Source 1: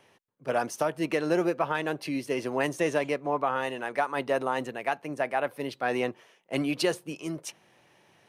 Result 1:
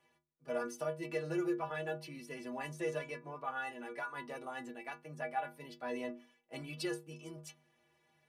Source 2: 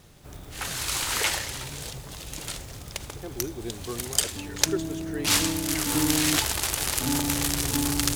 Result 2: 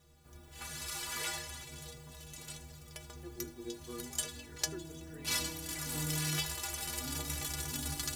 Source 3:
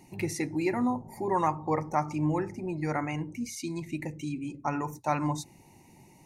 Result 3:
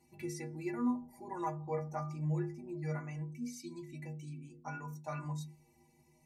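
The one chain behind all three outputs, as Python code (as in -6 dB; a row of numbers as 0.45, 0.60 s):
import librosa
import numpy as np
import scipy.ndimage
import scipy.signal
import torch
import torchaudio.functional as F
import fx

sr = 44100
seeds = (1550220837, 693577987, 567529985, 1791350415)

y = fx.stiff_resonator(x, sr, f0_hz=72.0, decay_s=0.54, stiffness=0.03)
y = y * 10.0 ** (-1.0 / 20.0)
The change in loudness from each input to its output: -11.5, -12.0, -9.0 LU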